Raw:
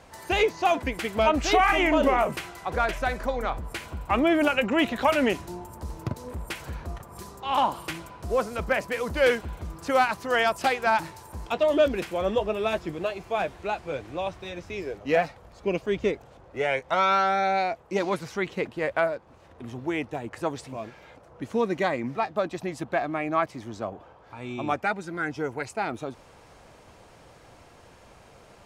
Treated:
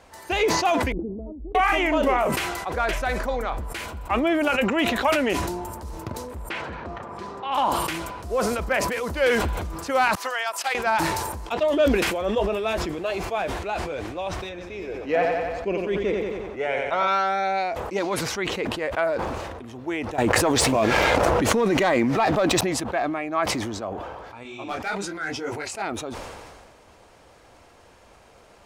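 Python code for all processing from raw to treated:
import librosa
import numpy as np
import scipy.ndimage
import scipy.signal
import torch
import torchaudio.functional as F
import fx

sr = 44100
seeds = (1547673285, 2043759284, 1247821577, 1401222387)

y = fx.chain(x, sr, fx.cheby2_lowpass(hz=2000.0, order=4, stop_db=80),
    fx.peak_eq(hz=110.0, db=-12.5, octaves=1.5),
    fx.over_compress(threshold_db=-35.0, ratio=-0.5), at=(0.92, 1.55))
y = fx.chain(y, sr, fx.bandpass_edges(low_hz=130.0, high_hz=2900.0),
    fx.env_flatten(amount_pct=50), at=(6.5, 7.52))
y = fx.chain(y, sr, fx.highpass(hz=810.0, slope=12),
    fx.upward_expand(threshold_db=-42.0, expansion=2.5), at=(10.15, 10.75))
y = fx.chain(y, sr, fx.high_shelf(hz=3400.0, db=-7.5),
    fx.echo_feedback(ms=90, feedback_pct=57, wet_db=-6.5), at=(14.49, 17.08))
y = fx.chain(y, sr, fx.leveller(passes=1),
    fx.env_flatten(amount_pct=100), at=(20.18, 22.61))
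y = fx.chain(y, sr, fx.peak_eq(hz=4800.0, db=6.0, octaves=2.6),
    fx.clip_hard(threshold_db=-18.0),
    fx.detune_double(cents=30), at=(24.43, 25.82))
y = fx.peak_eq(y, sr, hz=140.0, db=-7.0, octaves=0.94)
y = fx.sustainer(y, sr, db_per_s=30.0)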